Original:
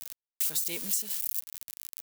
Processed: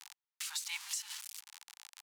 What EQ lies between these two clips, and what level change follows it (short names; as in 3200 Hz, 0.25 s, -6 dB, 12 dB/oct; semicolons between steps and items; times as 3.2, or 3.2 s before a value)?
steep high-pass 810 Hz 96 dB/oct; tape spacing loss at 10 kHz 22 dB; high shelf 4400 Hz +5 dB; +5.5 dB